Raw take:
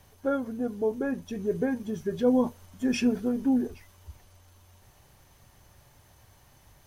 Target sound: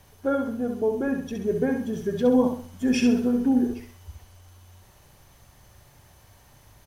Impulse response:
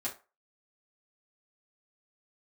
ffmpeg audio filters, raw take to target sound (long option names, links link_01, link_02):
-af "aecho=1:1:66|132|198|264|330:0.501|0.19|0.0724|0.0275|0.0105,volume=2.5dB"